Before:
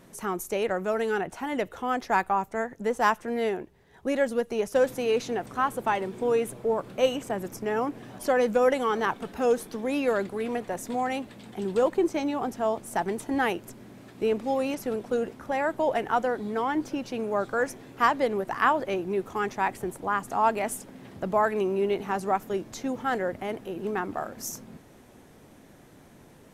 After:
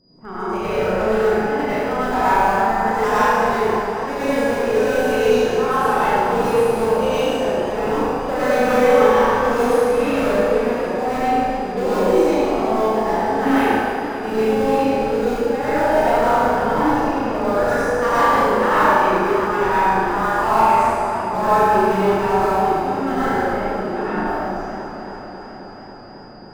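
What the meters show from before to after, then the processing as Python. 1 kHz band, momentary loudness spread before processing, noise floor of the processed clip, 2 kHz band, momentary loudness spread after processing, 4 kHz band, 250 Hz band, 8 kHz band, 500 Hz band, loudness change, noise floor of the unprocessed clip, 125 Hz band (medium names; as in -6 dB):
+11.5 dB, 9 LU, -35 dBFS, +9.5 dB, 8 LU, +8.5 dB, +9.5 dB, +4.0 dB, +9.5 dB, +10.0 dB, -53 dBFS, +11.5 dB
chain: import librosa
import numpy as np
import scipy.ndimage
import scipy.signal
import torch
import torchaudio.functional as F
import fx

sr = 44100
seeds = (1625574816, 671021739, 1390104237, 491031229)

p1 = fx.env_lowpass(x, sr, base_hz=500.0, full_db=-22.0)
p2 = fx.schmitt(p1, sr, flips_db=-21.5)
p3 = p1 + (p2 * librosa.db_to_amplitude(-5.0))
p4 = p3 + 10.0 ** (-57.0 / 20.0) * np.sin(2.0 * np.pi * 4900.0 * np.arange(len(p3)) / sr)
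p5 = p4 + fx.room_flutter(p4, sr, wall_m=6.3, rt60_s=0.91, dry=0)
p6 = fx.rev_plate(p5, sr, seeds[0], rt60_s=2.0, hf_ratio=0.55, predelay_ms=80, drr_db=-10.0)
p7 = fx.echo_warbled(p6, sr, ms=272, feedback_pct=79, rate_hz=2.8, cents=81, wet_db=-11.5)
y = p7 * librosa.db_to_amplitude(-6.0)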